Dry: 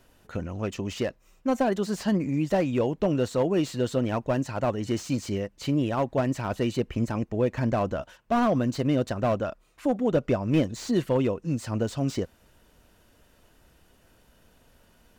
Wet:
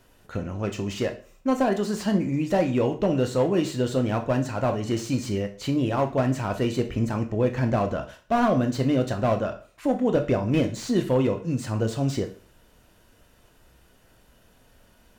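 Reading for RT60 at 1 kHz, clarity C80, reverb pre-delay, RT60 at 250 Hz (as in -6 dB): 0.45 s, 17.0 dB, 6 ms, 0.40 s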